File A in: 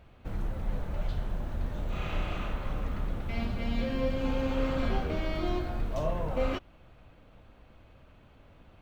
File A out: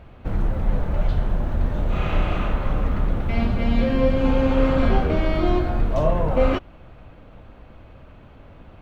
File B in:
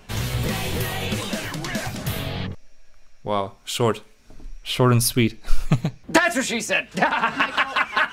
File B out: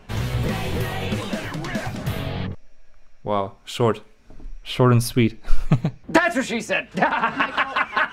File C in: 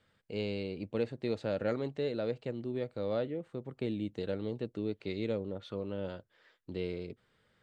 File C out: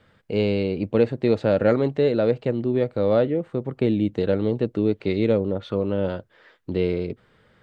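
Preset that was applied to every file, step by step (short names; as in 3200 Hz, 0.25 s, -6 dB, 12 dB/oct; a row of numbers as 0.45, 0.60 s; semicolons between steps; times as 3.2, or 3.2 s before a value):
high shelf 3400 Hz -10.5 dB; match loudness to -23 LUFS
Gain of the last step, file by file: +11.0, +1.5, +14.0 dB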